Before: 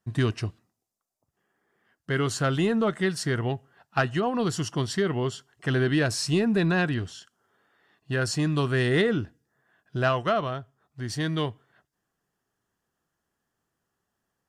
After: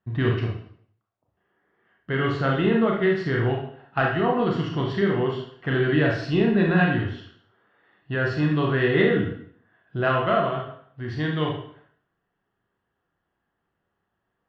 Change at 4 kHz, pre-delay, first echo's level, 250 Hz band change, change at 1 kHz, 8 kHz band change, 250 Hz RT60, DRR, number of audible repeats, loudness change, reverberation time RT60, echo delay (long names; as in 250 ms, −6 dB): −1.5 dB, 21 ms, no echo audible, +3.5 dB, +4.0 dB, below −20 dB, 0.60 s, −1.5 dB, no echo audible, +3.0 dB, 0.60 s, no echo audible